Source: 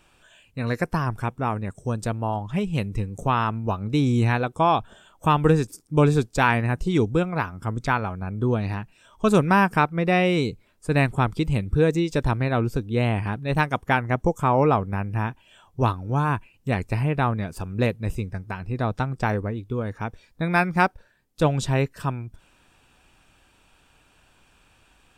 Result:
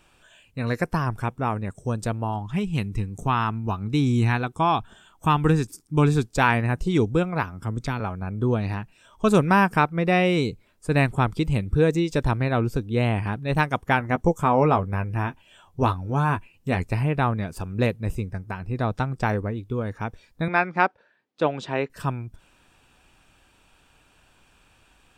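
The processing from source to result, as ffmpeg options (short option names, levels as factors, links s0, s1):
-filter_complex "[0:a]asettb=1/sr,asplit=3[s0][s1][s2];[s0]atrim=end=2.244[s3];[s1]atrim=start=2.24:end=6.3,asetpts=PTS-STARTPTS,afade=t=in:d=0.004:c=qsin,afade=t=out:st=4.056:d=0.004:c=qsin,equalizer=f=550:w=3.1:g=-10.5[s4];[s2]atrim=start=6.296[s5];[s3][s4]acrossfade=d=0.004:c1=hsin:c2=qsin[s6];[s6][s5]acrossfade=d=0.004:c1=qsin:c2=hsin,asettb=1/sr,asplit=3[s7][s8][s9];[s7]atrim=end=7.434[s10];[s8]atrim=start=7.43:end=8,asetpts=PTS-STARTPTS,afade=t=in:d=0.004:c=qsin,afade=t=out:st=0.566:d=0.004:c=qsin,acrossover=split=400|3000[s11][s12][s13];[s12]acompressor=threshold=0.0141:ratio=2:attack=3.2:release=140:knee=2.83:detection=peak[s14];[s11][s14][s13]amix=inputs=3:normalize=0[s15];[s9]atrim=start=7.996[s16];[s10][s15]acrossfade=d=0.004:c1=hsin:c2=qsin[s17];[s17][s16]acrossfade=d=0.004:c1=qsin:c2=hsin,asettb=1/sr,asplit=3[s18][s19][s20];[s18]atrim=end=13.994[s21];[s19]atrim=start=13.99:end=16.88,asetpts=PTS-STARTPTS,afade=t=in:d=0.004:c=qsin,afade=t=out:st=2.886:d=0.004:c=qsin,asplit=2[s22][s23];[s23]adelay=12,volume=0.398[s24];[s22][s24]amix=inputs=2:normalize=0,atrim=end_sample=127449[s25];[s20]atrim=start=16.876[s26];[s21][s25]acrossfade=d=0.004:c1=hsin:c2=qsin[s27];[s27][s26]acrossfade=d=0.004:c1=qsin:c2=hsin,asettb=1/sr,asplit=3[s28][s29][s30];[s28]atrim=end=18.014[s31];[s29]atrim=start=18.01:end=18.73,asetpts=PTS-STARTPTS,afade=t=in:d=0.004:c=qsin,afade=t=out:st=0.716:d=0.004:c=qsin,equalizer=f=3700:t=o:w=1.7:g=-3[s32];[s30]atrim=start=18.726[s33];[s31][s32]acrossfade=d=0.004:c1=hsin:c2=qsin[s34];[s34][s33]acrossfade=d=0.004:c1=qsin:c2=hsin,asettb=1/sr,asplit=3[s35][s36][s37];[s35]atrim=end=20.484[s38];[s36]atrim=start=20.48:end=21.9,asetpts=PTS-STARTPTS,afade=t=in:d=0.004:c=qsin,afade=t=out:st=1.416:d=0.004:c=qsin,highpass=280,lowpass=3400[s39];[s37]atrim=start=21.896[s40];[s38][s39]acrossfade=d=0.004:c1=hsin:c2=qsin[s41];[s41][s40]acrossfade=d=0.004:c1=qsin:c2=hsin"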